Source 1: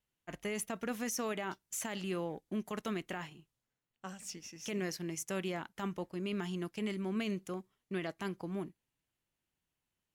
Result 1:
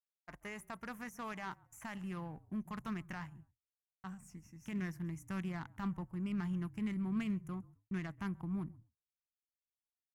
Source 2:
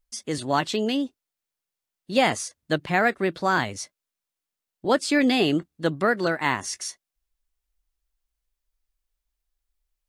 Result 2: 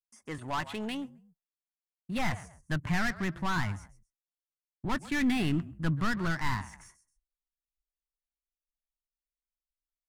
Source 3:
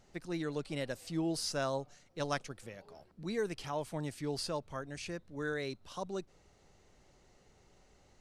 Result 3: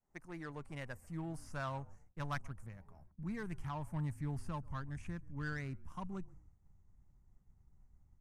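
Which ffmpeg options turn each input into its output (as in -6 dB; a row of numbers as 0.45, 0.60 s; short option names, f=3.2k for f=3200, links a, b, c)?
-filter_complex "[0:a]equalizer=f=500:t=o:w=1:g=-4,equalizer=f=1k:t=o:w=1:g=9,equalizer=f=2k:t=o:w=1:g=7,asplit=2[a][b];[b]asplit=2[c][d];[c]adelay=132,afreqshift=-40,volume=-22dB[e];[d]adelay=264,afreqshift=-80,volume=-31.6dB[f];[e][f]amix=inputs=2:normalize=0[g];[a][g]amix=inputs=2:normalize=0,asoftclip=type=tanh:threshold=-18.5dB,agate=range=-33dB:threshold=-55dB:ratio=3:detection=peak,acrossover=split=4700[h][i];[i]acompressor=threshold=-42dB:ratio=4:attack=1:release=60[j];[h][j]amix=inputs=2:normalize=0,asubboost=boost=11:cutoff=150,acrossover=split=6800[k][l];[k]adynamicsmooth=sensitivity=4:basefreq=950[m];[m][l]amix=inputs=2:normalize=0,volume=-8.5dB"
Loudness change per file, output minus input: -2.5, -8.5, -5.5 LU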